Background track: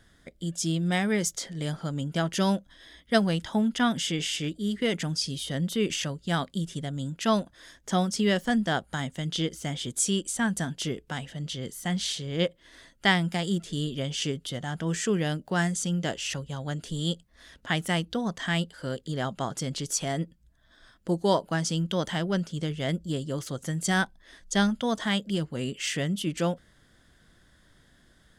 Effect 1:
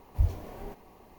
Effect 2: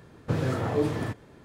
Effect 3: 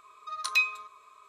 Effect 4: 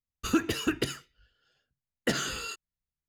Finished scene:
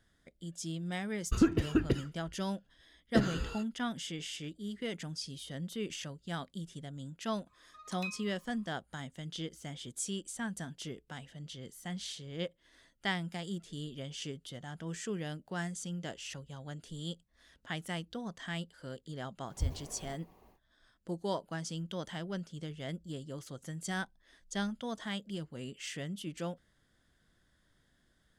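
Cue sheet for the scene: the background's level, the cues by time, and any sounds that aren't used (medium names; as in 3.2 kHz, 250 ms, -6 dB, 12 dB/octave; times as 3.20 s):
background track -11.5 dB
1.08 s: add 4 -5.5 dB + tilt EQ -3.5 dB/octave
7.47 s: add 3 -16.5 dB
19.42 s: add 1 -8 dB, fades 0.10 s
not used: 2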